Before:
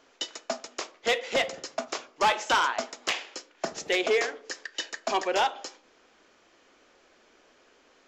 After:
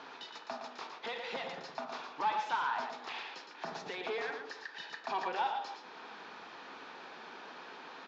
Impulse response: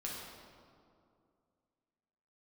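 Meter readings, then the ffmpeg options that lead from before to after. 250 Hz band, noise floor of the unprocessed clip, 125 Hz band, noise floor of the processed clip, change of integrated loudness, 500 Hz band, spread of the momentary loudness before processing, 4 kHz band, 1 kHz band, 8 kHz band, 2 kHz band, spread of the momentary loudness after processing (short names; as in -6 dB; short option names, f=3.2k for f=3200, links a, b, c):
-11.0 dB, -62 dBFS, -6.5 dB, -52 dBFS, -11.0 dB, -13.0 dB, 12 LU, -12.5 dB, -6.0 dB, -21.0 dB, -10.0 dB, 14 LU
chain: -af "highshelf=f=2.1k:g=11.5,acompressor=threshold=-40dB:ratio=3,alimiter=level_in=9dB:limit=-24dB:level=0:latency=1:release=55,volume=-9dB,asoftclip=type=tanh:threshold=-38.5dB,highpass=150,equalizer=f=170:t=q:w=4:g=5,equalizer=f=330:t=q:w=4:g=-5,equalizer=f=570:t=q:w=4:g=-7,equalizer=f=890:t=q:w=4:g=8,equalizer=f=2.1k:t=q:w=4:g=-7,equalizer=f=3k:t=q:w=4:g=-9,lowpass=f=3.5k:w=0.5412,lowpass=f=3.5k:w=1.3066,aecho=1:1:114:0.473,volume=10dB"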